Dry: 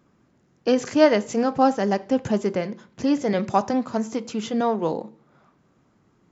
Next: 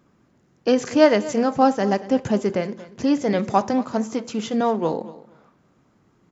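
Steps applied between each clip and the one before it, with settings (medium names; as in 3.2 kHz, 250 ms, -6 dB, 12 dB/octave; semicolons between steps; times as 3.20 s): feedback delay 232 ms, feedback 18%, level -17.5 dB; trim +1.5 dB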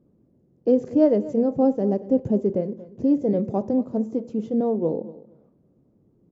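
FFT filter 520 Hz 0 dB, 750 Hz -11 dB, 1.4 kHz -24 dB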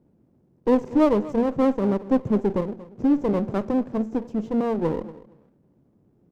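comb filter that takes the minimum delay 0.37 ms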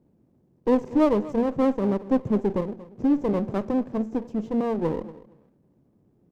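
band-stop 1.4 kHz, Q 22; trim -1.5 dB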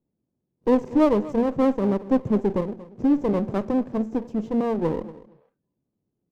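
spectral noise reduction 18 dB; trim +1.5 dB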